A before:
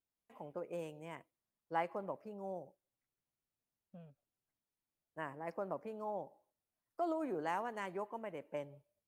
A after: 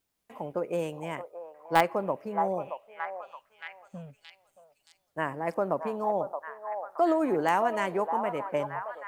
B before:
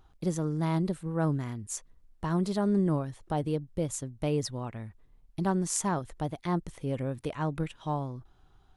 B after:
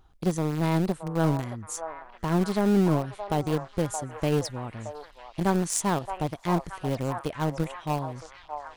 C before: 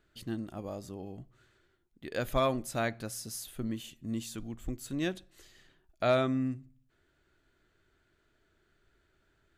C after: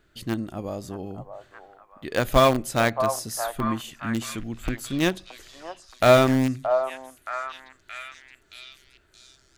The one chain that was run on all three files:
in parallel at -4.5 dB: small samples zeroed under -25 dBFS; on the sum: repeats whose band climbs or falls 623 ms, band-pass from 830 Hz, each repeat 0.7 oct, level -4.5 dB; peak normalisation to -6 dBFS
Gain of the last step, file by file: +12.5 dB, +1.0 dB, +7.5 dB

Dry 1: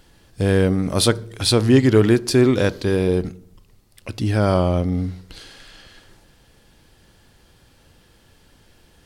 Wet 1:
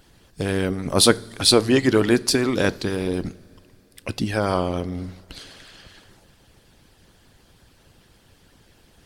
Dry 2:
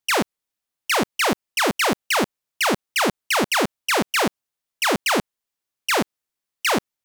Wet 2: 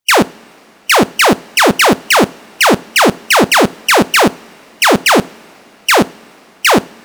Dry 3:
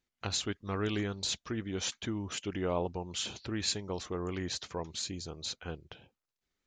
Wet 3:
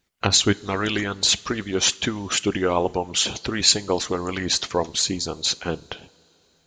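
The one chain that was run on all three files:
harmonic-percussive split harmonic -15 dB; two-slope reverb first 0.38 s, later 4 s, from -18 dB, DRR 16.5 dB; peak normalisation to -1.5 dBFS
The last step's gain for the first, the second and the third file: +4.0 dB, +12.0 dB, +16.5 dB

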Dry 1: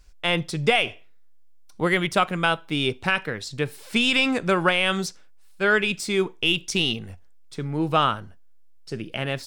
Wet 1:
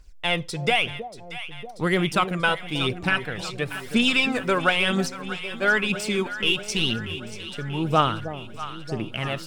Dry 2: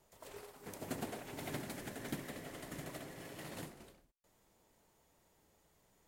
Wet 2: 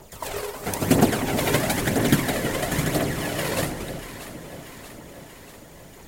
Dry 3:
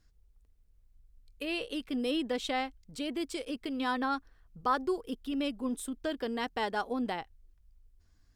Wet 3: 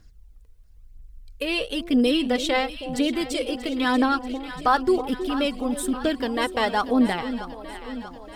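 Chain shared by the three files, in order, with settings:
phaser 1 Hz, delay 2.2 ms, feedback 47%; echo whose repeats swap between lows and highs 318 ms, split 800 Hz, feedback 78%, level -10.5 dB; normalise loudness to -24 LUFS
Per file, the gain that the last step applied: -2.0 dB, +21.0 dB, +9.5 dB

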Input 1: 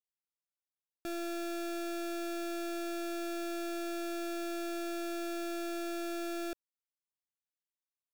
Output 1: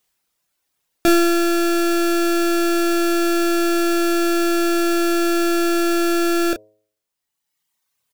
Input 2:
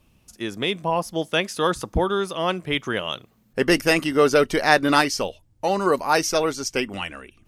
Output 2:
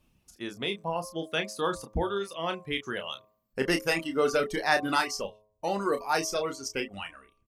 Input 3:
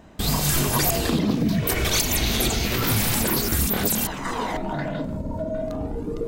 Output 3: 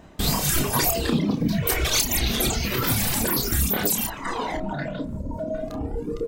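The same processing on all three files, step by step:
reverb removal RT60 1.4 s; doubling 30 ms -7.5 dB; de-hum 106.3 Hz, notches 11; peak normalisation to -9 dBFS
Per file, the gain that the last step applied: +24.5 dB, -7.5 dB, +1.0 dB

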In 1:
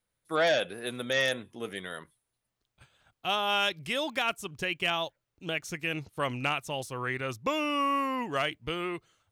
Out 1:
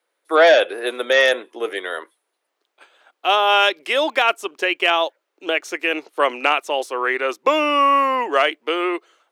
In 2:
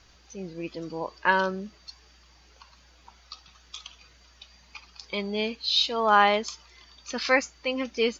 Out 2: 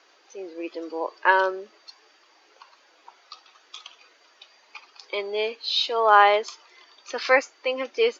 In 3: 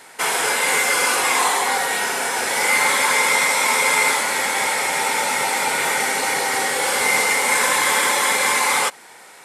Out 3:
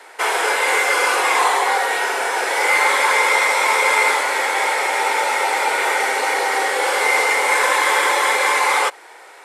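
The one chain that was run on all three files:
steep high-pass 330 Hz 36 dB/octave; treble shelf 4.1 kHz -11.5 dB; peak normalisation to -3 dBFS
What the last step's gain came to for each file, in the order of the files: +14.0 dB, +4.5 dB, +4.0 dB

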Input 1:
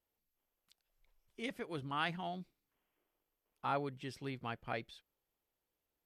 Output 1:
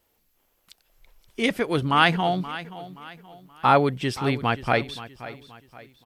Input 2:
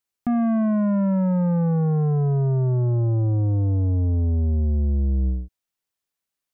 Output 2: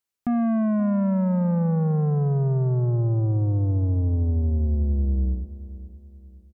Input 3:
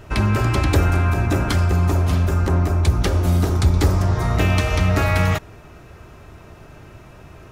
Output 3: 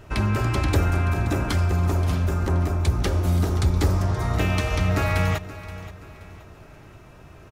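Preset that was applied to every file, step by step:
feedback delay 526 ms, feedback 38%, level -15.5 dB; normalise loudness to -23 LUFS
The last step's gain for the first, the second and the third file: +18.5 dB, -1.5 dB, -4.5 dB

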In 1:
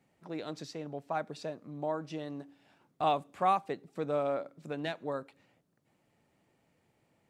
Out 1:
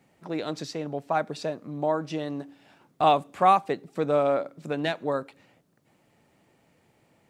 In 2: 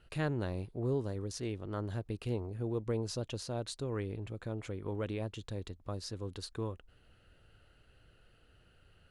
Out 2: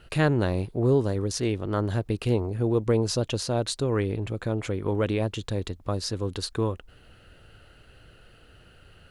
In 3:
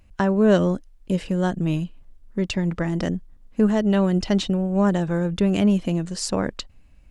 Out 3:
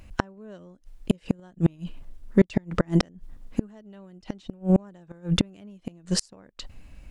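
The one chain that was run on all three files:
bass shelf 110 Hz -2.5 dB; inverted gate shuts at -15 dBFS, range -35 dB; normalise loudness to -27 LUFS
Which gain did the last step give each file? +8.5 dB, +12.0 dB, +8.0 dB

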